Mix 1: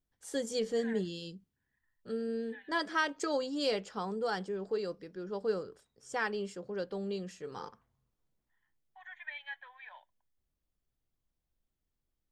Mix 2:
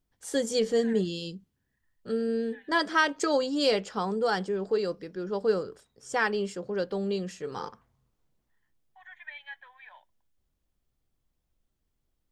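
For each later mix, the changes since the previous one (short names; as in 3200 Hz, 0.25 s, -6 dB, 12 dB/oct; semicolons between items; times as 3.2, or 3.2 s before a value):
first voice +7.0 dB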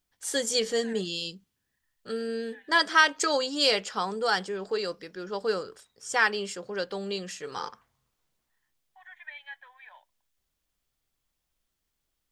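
first voice: add tilt shelf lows -7 dB, about 710 Hz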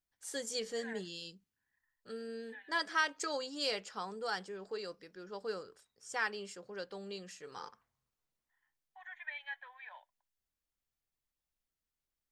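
first voice -11.5 dB; master: add bell 3300 Hz -3 dB 0.27 oct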